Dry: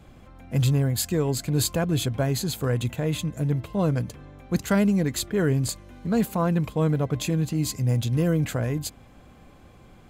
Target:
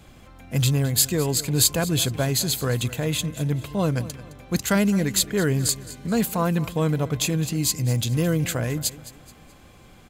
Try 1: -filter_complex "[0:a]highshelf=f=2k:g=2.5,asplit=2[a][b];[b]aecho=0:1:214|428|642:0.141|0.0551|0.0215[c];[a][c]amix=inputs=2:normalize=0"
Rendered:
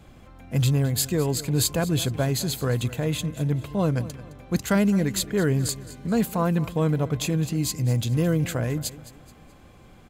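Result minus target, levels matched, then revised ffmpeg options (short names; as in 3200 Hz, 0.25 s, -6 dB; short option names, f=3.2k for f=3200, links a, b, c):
4000 Hz band -3.5 dB
-filter_complex "[0:a]highshelf=f=2k:g=9,asplit=2[a][b];[b]aecho=0:1:214|428|642:0.141|0.0551|0.0215[c];[a][c]amix=inputs=2:normalize=0"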